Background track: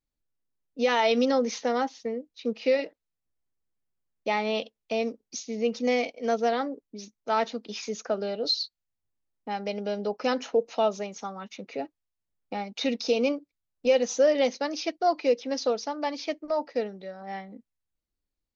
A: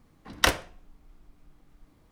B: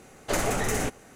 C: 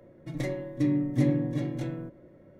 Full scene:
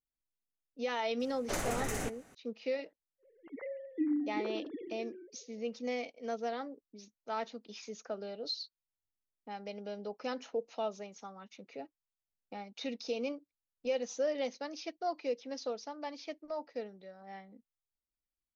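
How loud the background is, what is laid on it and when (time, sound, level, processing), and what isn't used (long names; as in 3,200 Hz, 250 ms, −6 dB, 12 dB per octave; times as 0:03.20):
background track −11.5 dB
0:01.20: mix in B −9 dB
0:03.18: mix in C −9.5 dB, fades 0.10 s + three sine waves on the formant tracks
not used: A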